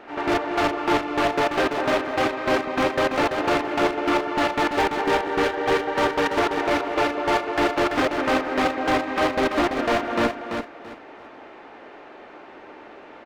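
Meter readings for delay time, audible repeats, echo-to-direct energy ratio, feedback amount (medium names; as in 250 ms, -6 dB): 336 ms, 3, -6.0 dB, 24%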